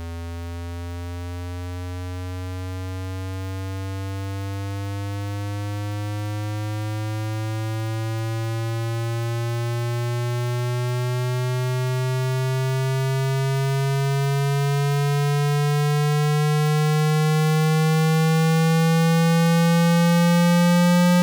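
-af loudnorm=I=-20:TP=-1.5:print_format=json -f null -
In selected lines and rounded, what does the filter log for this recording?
"input_i" : "-21.1",
"input_tp" : "-14.6",
"input_lra" : "12.7",
"input_thresh" : "-31.4",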